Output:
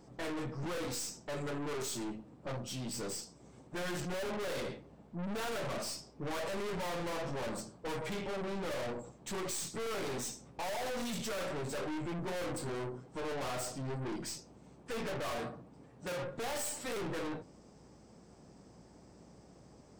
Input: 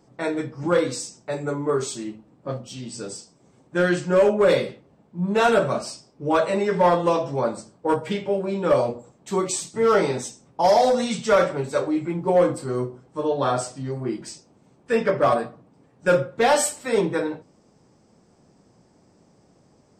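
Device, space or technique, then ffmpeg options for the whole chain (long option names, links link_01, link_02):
valve amplifier with mains hum: -filter_complex "[0:a]aeval=exprs='(tanh(79.4*val(0)+0.4)-tanh(0.4))/79.4':channel_layout=same,aeval=exprs='val(0)+0.000398*(sin(2*PI*60*n/s)+sin(2*PI*2*60*n/s)/2+sin(2*PI*3*60*n/s)/3+sin(2*PI*4*60*n/s)/4+sin(2*PI*5*60*n/s)/5)':channel_layout=same,asettb=1/sr,asplit=3[link_01][link_02][link_03];[link_01]atrim=end=15.384[link_04];[link_02]atrim=start=15.38:end=16.23,asetpts=PTS-STARTPTS,afade=type=in:duration=0.004:curve=qsin,afade=type=out:start_time=0.846:duration=0.004:curve=qsin,highpass=52[link_05];[link_03]atrim=start=16.226[link_06];[link_04][link_05]acrossfade=duration=0.004:curve1=hsin:curve2=qsin[link_07];[link_07][link_06]acrossfade=duration=0.004:curve1=qsin:curve2=hsin,volume=1dB"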